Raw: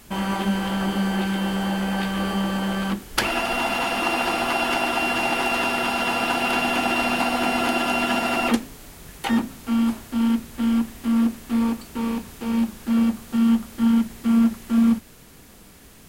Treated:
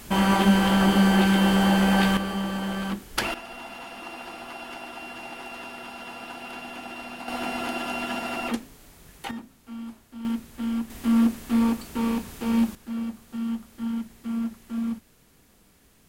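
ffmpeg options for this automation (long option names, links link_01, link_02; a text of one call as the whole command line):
ffmpeg -i in.wav -af "asetnsamples=nb_out_samples=441:pad=0,asendcmd='2.17 volume volume -4.5dB;3.34 volume volume -16dB;7.28 volume volume -8dB;9.31 volume volume -16.5dB;10.25 volume volume -7dB;10.9 volume volume 0dB;12.75 volume volume -11dB',volume=4.5dB" out.wav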